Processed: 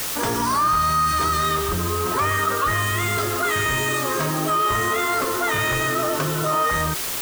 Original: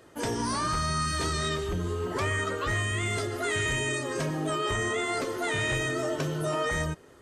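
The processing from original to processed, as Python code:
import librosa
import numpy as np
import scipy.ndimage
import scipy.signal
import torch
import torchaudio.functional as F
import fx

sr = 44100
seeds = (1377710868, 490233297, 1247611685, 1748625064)

y = fx.peak_eq(x, sr, hz=1200.0, db=11.5, octaves=0.69)
y = fx.quant_dither(y, sr, seeds[0], bits=6, dither='triangular')
y = fx.env_flatten(y, sr, amount_pct=50)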